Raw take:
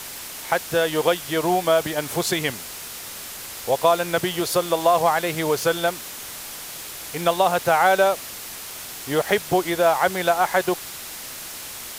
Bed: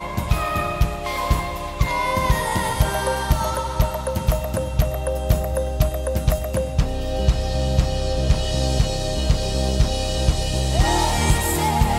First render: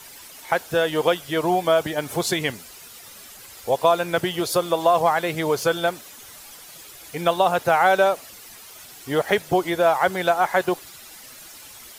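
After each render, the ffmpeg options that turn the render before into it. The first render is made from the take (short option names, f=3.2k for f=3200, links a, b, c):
-af "afftdn=nr=11:nf=-36"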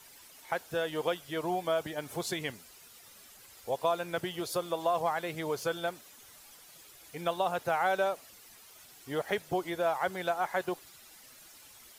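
-af "volume=-11.5dB"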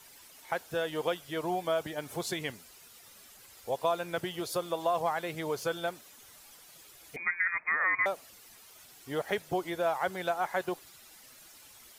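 -filter_complex "[0:a]asettb=1/sr,asplit=3[a][b][c];[a]atrim=end=7.164[d];[b]atrim=start=7.16:end=8.06,asetpts=PTS-STARTPTS,afade=t=in:d=0.004:c=qsin,afade=t=out:st=0.896:d=0.004:c=qsin,lowpass=f=2.2k:t=q:w=0.5098,lowpass=f=2.2k:t=q:w=0.6013,lowpass=f=2.2k:t=q:w=0.9,lowpass=f=2.2k:t=q:w=2.563,afreqshift=-2600[e];[c]atrim=start=8.056[f];[d][e]acrossfade=d=0.004:c1=hsin:c2=qsin[g];[g][f]acrossfade=d=0.004:c1=qsin:c2=hsin"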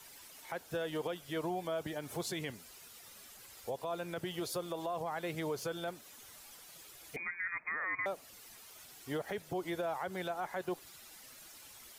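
-filter_complex "[0:a]acrossover=split=430[a][b];[b]acompressor=threshold=-43dB:ratio=1.5[c];[a][c]amix=inputs=2:normalize=0,alimiter=level_in=4.5dB:limit=-24dB:level=0:latency=1:release=53,volume=-4.5dB"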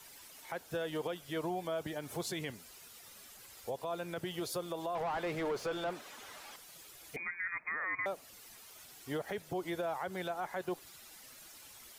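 -filter_complex "[0:a]asettb=1/sr,asplit=3[a][b][c];[a]atrim=end=4.954[d];[b]atrim=start=4.95:end=6.56,asetpts=PTS-STARTPTS,afade=t=in:d=0.004:c=qsin,afade=t=out:st=1.606:d=0.004:c=qsin,asplit=2[e][f];[f]highpass=f=720:p=1,volume=21dB,asoftclip=type=tanh:threshold=-28dB[g];[e][g]amix=inputs=2:normalize=0,lowpass=f=1.4k:p=1,volume=-6dB[h];[c]atrim=start=6.556[i];[d][h]acrossfade=d=0.004:c1=hsin:c2=qsin[j];[j][i]acrossfade=d=0.004:c1=qsin:c2=hsin"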